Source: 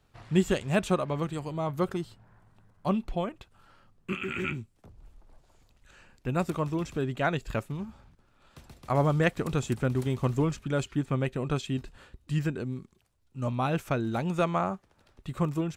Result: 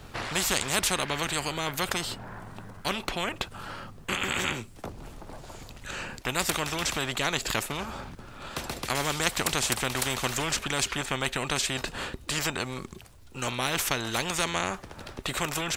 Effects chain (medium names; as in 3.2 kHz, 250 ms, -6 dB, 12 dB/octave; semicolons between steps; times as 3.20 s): spectrum-flattening compressor 4:1; trim +3.5 dB